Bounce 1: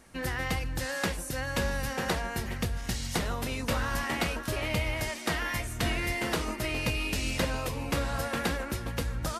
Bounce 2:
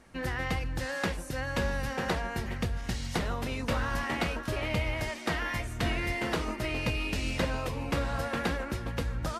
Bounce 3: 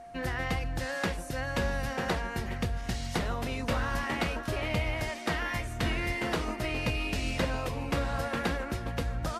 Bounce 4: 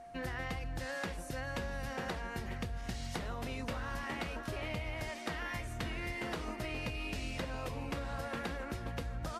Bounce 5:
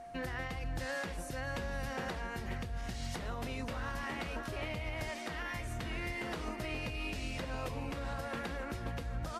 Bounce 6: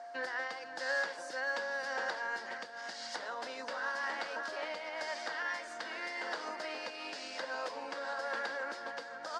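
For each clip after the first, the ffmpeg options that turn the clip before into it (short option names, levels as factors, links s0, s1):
-af "lowpass=f=3700:p=1"
-af "aeval=exprs='val(0)+0.00562*sin(2*PI*700*n/s)':c=same"
-af "acompressor=threshold=0.0282:ratio=6,volume=0.631"
-af "alimiter=level_in=2.24:limit=0.0631:level=0:latency=1:release=165,volume=0.447,volume=1.33"
-af "highpass=f=340:w=0.5412,highpass=f=340:w=1.3066,equalizer=f=380:t=q:w=4:g=-9,equalizer=f=560:t=q:w=4:g=4,equalizer=f=910:t=q:w=4:g=5,equalizer=f=1600:t=q:w=4:g=9,equalizer=f=2500:t=q:w=4:g=-6,equalizer=f=4800:t=q:w=4:g=9,lowpass=f=7800:w=0.5412,lowpass=f=7800:w=1.3066"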